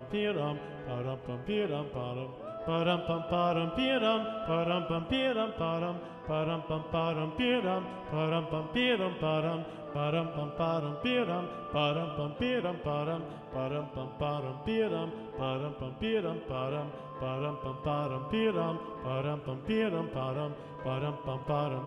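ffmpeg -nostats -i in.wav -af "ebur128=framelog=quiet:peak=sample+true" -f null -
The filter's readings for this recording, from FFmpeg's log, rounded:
Integrated loudness:
  I:         -33.2 LUFS
  Threshold: -43.2 LUFS
Loudness range:
  LRA:         3.7 LU
  Threshold: -53.0 LUFS
  LRA low:   -34.9 LUFS
  LRA high:  -31.2 LUFS
Sample peak:
  Peak:      -16.2 dBFS
True peak:
  Peak:      -16.2 dBFS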